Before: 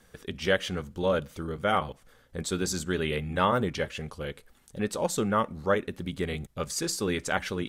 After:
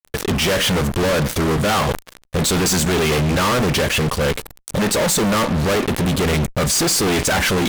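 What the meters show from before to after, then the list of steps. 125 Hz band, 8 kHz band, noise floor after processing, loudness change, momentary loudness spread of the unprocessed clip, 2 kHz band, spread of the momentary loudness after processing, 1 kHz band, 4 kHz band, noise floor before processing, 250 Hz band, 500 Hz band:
+14.5 dB, +16.0 dB, −53 dBFS, +11.5 dB, 11 LU, +11.5 dB, 6 LU, +8.5 dB, +15.0 dB, −61 dBFS, +12.5 dB, +9.5 dB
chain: fuzz pedal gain 50 dB, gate −50 dBFS
level that may fall only so fast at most 150 dB per second
level −3 dB

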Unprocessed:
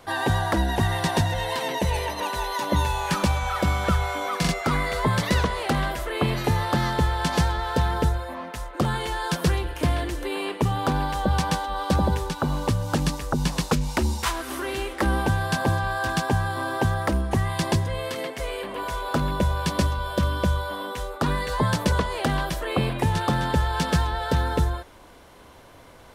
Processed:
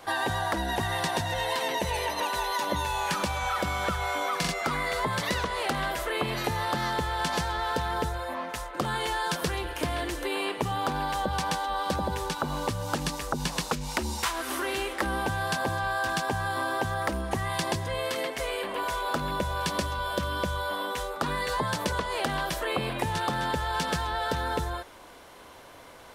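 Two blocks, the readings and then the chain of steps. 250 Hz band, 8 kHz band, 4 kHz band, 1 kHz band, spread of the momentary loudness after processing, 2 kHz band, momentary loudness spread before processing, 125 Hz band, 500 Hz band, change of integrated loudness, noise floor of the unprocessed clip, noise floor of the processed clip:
−8.0 dB, −1.5 dB, −1.0 dB, −2.0 dB, 3 LU, −1.5 dB, 5 LU, −10.5 dB, −3.5 dB, −4.5 dB, −48 dBFS, −48 dBFS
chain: low-shelf EQ 250 Hz −10 dB
downward compressor, threshold −27 dBFS, peak gain reduction 7.5 dB
backwards echo 50 ms −24 dB
level +2 dB

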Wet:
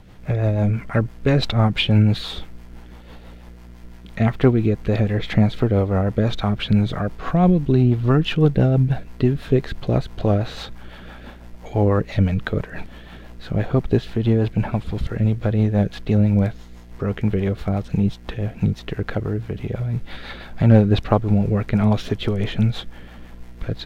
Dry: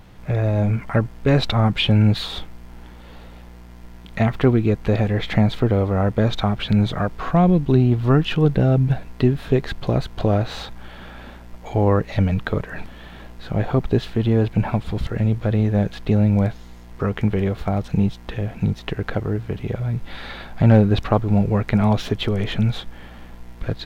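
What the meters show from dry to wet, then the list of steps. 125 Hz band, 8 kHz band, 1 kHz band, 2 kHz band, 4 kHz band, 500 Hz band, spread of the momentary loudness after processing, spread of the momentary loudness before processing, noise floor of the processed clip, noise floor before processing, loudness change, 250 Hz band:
0.0 dB, can't be measured, −2.0 dB, −1.0 dB, −1.0 dB, −0.5 dB, 12 LU, 12 LU, −41 dBFS, −41 dBFS, 0.0 dB, 0.0 dB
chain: rotating-speaker cabinet horn 6 Hz
level +1.5 dB

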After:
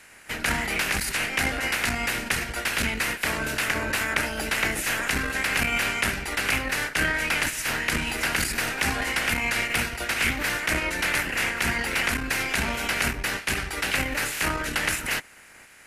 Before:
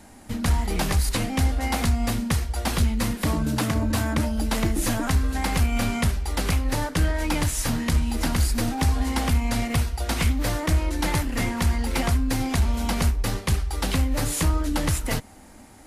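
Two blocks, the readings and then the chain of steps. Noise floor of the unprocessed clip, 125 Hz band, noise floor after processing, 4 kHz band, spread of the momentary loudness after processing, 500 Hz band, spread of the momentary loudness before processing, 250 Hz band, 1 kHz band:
−47 dBFS, −12.0 dB, −49 dBFS, +3.5 dB, 3 LU, −1.5 dB, 2 LU, −7.5 dB, 0.0 dB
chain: ceiling on every frequency bin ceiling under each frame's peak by 21 dB
flat-topped bell 2,000 Hz +9.5 dB 1.2 octaves
saturating transformer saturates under 340 Hz
level −6 dB

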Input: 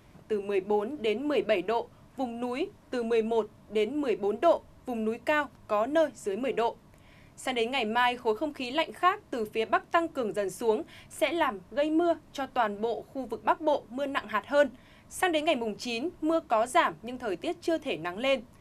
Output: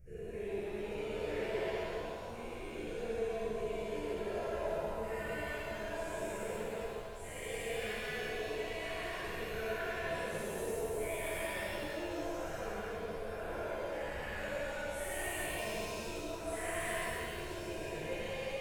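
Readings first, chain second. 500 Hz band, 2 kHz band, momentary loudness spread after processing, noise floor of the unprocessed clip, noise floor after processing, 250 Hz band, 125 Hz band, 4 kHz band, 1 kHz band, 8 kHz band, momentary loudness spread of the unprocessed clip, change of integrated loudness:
−9.5 dB, −6.5 dB, 4 LU, −56 dBFS, −44 dBFS, −13.0 dB, +1.0 dB, −9.0 dB, −13.5 dB, −0.5 dB, 8 LU, −10.0 dB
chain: every bin's largest magnitude spread in time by 480 ms
guitar amp tone stack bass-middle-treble 10-0-1
phaser with its sweep stopped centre 980 Hz, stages 6
reverb with rising layers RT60 2 s, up +7 semitones, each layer −8 dB, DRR −8.5 dB

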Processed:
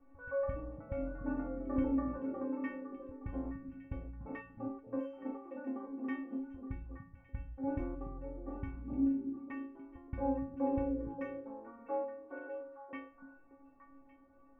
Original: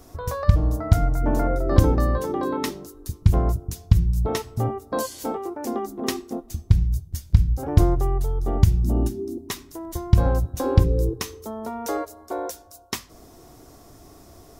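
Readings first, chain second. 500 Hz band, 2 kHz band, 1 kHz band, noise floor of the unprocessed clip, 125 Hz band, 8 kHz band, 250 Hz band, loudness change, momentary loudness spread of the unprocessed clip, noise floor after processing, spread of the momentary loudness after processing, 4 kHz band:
−13.0 dB, −11.5 dB, −15.5 dB, −49 dBFS, −27.0 dB, below −40 dB, −8.5 dB, −16.0 dB, 13 LU, −62 dBFS, 14 LU, below −30 dB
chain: elliptic low-pass filter 2,600 Hz, stop band 40 dB
stiff-string resonator 270 Hz, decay 0.6 s, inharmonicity 0.008
dynamic equaliser 340 Hz, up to +6 dB, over −57 dBFS, Q 1
echo through a band-pass that steps 290 ms, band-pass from 170 Hz, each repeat 1.4 octaves, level −3 dB
low-pass that shuts in the quiet parts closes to 1,500 Hz, open at −38.5 dBFS
level +4.5 dB

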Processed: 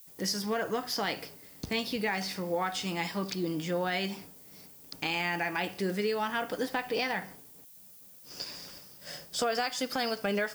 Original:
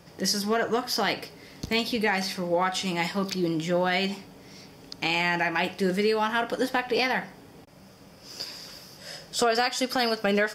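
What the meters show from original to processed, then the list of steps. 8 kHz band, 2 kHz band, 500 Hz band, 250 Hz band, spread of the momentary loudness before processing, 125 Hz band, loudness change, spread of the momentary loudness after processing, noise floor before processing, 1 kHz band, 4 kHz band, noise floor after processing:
−5.0 dB, −6.0 dB, −6.0 dB, −5.5 dB, 16 LU, −5.5 dB, −6.0 dB, 18 LU, −51 dBFS, −6.0 dB, −5.5 dB, −53 dBFS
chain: downward expander −40 dBFS
in parallel at 0 dB: downward compressor, threshold −32 dBFS, peak gain reduction 12 dB
on the sum: background noise violet −45 dBFS
level −8.5 dB

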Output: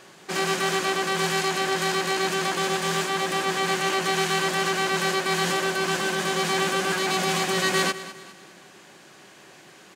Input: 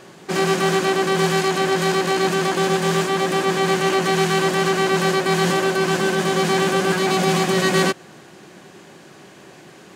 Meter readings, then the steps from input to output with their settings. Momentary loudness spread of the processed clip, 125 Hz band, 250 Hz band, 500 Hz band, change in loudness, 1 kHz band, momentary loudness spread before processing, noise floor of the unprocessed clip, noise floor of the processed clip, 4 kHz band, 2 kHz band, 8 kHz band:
2 LU, −9.5 dB, −9.0 dB, −8.0 dB, −5.0 dB, −4.5 dB, 2 LU, −45 dBFS, −50 dBFS, −1.5 dB, −2.5 dB, −1.5 dB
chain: tilt shelving filter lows −4.5 dB, about 670 Hz
repeating echo 204 ms, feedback 42%, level −15 dB
level −6 dB

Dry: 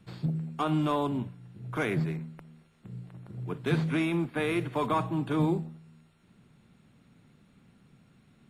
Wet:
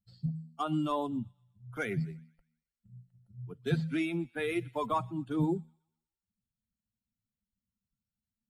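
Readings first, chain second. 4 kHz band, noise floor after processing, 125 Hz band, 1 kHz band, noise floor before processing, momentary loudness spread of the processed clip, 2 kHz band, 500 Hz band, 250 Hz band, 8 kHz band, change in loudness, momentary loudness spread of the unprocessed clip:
−4.5 dB, below −85 dBFS, −5.0 dB, −3.5 dB, −63 dBFS, 12 LU, −4.0 dB, −4.0 dB, −4.0 dB, −4.5 dB, −3.5 dB, 17 LU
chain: spectral dynamics exaggerated over time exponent 2
delay with a high-pass on its return 123 ms, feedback 41%, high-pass 1,600 Hz, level −21.5 dB

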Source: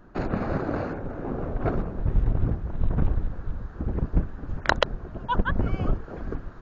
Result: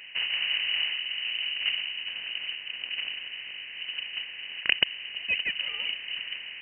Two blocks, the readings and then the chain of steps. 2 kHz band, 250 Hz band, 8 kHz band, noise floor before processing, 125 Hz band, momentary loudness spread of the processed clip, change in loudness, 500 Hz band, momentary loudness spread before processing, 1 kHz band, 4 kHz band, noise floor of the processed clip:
+4.5 dB, −26.5 dB, can't be measured, −41 dBFS, below −30 dB, 9 LU, 0.0 dB, −21.0 dB, 10 LU, −19.0 dB, +14.5 dB, −41 dBFS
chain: compressor on every frequency bin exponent 0.6
Butterworth high-pass 530 Hz 48 dB per octave
tilt shelving filter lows +8.5 dB, about 850 Hz
voice inversion scrambler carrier 3,500 Hz
level −1.5 dB

